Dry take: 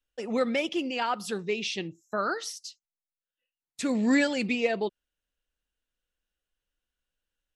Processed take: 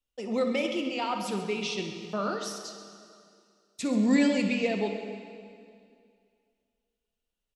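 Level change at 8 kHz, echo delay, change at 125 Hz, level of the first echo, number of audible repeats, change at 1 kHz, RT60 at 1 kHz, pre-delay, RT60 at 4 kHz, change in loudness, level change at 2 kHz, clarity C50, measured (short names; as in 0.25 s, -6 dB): -1.0 dB, 60 ms, +3.5 dB, -13.0 dB, 2, -1.5 dB, 2.2 s, 7 ms, 2.2 s, 0.0 dB, -3.5 dB, 4.5 dB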